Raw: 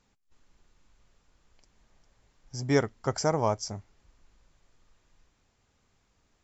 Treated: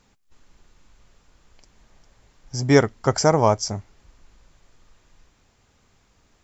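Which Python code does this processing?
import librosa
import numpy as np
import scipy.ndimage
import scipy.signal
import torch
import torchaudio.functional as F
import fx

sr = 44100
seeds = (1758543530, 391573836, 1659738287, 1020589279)

y = x * 10.0 ** (9.0 / 20.0)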